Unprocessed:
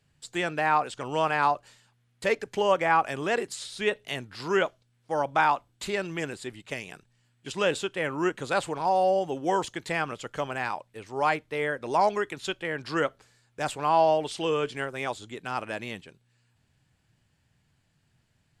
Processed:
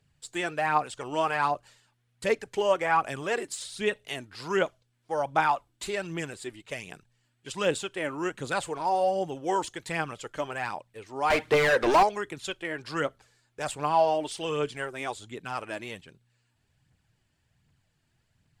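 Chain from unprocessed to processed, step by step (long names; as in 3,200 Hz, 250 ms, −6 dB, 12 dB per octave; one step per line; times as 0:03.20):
dynamic equaliser 9,100 Hz, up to +5 dB, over −53 dBFS, Q 1.2
0:11.30–0:12.03: mid-hump overdrive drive 32 dB, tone 2,200 Hz, clips at −12 dBFS
phase shifter 1.3 Hz, delay 3.5 ms, feedback 42%
level −3 dB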